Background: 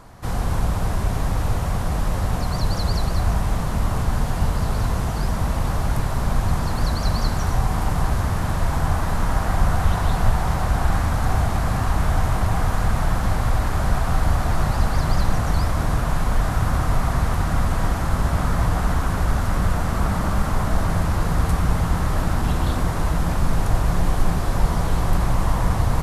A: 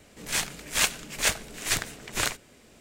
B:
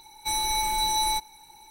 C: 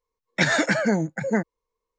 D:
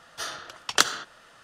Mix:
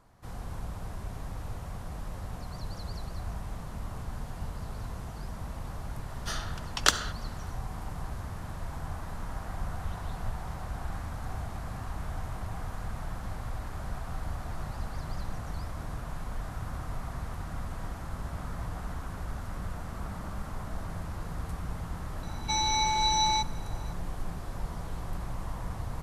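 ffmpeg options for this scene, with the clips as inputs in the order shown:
-filter_complex "[0:a]volume=0.15[s0];[2:a]aresample=16000,aresample=44100[s1];[4:a]atrim=end=1.43,asetpts=PTS-STARTPTS,volume=0.708,afade=t=in:d=0.004:c=hsin,afade=t=out:st=1.426:d=0.004:c=hsin,adelay=6080[s2];[s1]atrim=end=1.7,asetpts=PTS-STARTPTS,volume=0.944,afade=t=in:d=0.004:c=hsin,afade=t=out:st=1.696:d=0.004:c=hsin,adelay=22230[s3];[s0][s2][s3]amix=inputs=3:normalize=0"

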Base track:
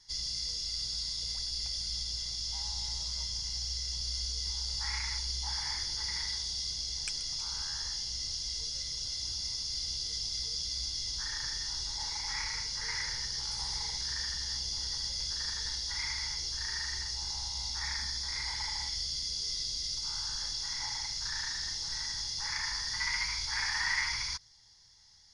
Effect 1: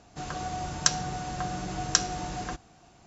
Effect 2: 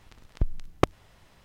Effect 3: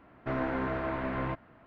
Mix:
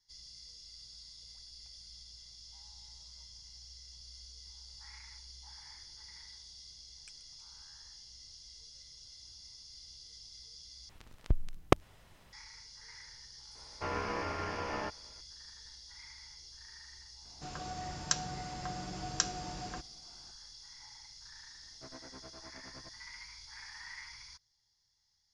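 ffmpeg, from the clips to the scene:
-filter_complex "[3:a]asplit=2[s0][s1];[0:a]volume=0.15[s2];[2:a]highshelf=f=5900:g=2.5[s3];[s0]aeval=exprs='val(0)*sin(2*PI*740*n/s)':c=same[s4];[s1]tremolo=f=9.7:d=0.94[s5];[s2]asplit=2[s6][s7];[s6]atrim=end=10.894[s8];[s3]atrim=end=1.44,asetpts=PTS-STARTPTS,volume=0.708[s9];[s7]atrim=start=12.326[s10];[s4]atrim=end=1.66,asetpts=PTS-STARTPTS,volume=0.794,afade=t=in:d=0.004:c=hsin,afade=t=out:st=1.656:d=0.004:c=hsin,adelay=13550[s11];[1:a]atrim=end=3.06,asetpts=PTS-STARTPTS,volume=0.398,afade=t=in:d=0.004:c=hsin,afade=t=out:st=3.056:d=0.004:c=hsin,adelay=17250[s12];[s5]atrim=end=1.66,asetpts=PTS-STARTPTS,volume=0.133,afade=t=in:d=0.004:c=hsin,afade=t=out:st=1.656:d=0.004:c=hsin,adelay=21540[s13];[s8][s9]acrossfade=d=0.004:c1=hsin:c2=hsin[s14];[s14][s10]acrossfade=d=0.004:c1=hsin:c2=hsin[s15];[s15][s11][s12][s13]amix=inputs=4:normalize=0"

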